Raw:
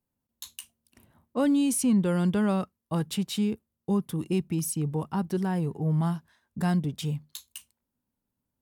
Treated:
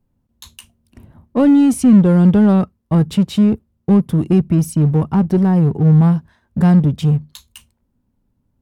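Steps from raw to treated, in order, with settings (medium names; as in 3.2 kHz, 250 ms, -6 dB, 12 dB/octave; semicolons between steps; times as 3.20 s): tilt EQ -3 dB/octave; in parallel at -4.5 dB: overload inside the chain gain 27 dB; on the sum: trim +6 dB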